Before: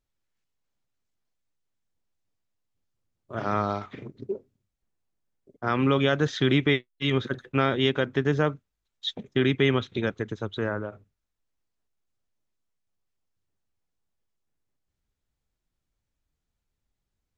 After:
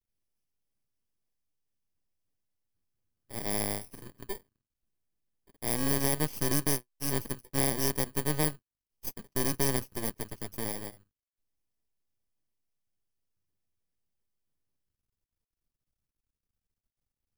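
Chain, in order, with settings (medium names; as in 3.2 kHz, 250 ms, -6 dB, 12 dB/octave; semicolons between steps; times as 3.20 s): bit-reversed sample order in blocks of 32 samples; half-wave rectifier; trim -2.5 dB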